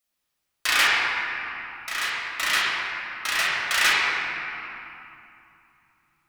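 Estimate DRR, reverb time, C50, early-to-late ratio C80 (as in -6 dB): -7.5 dB, 2.8 s, -3.0 dB, -1.5 dB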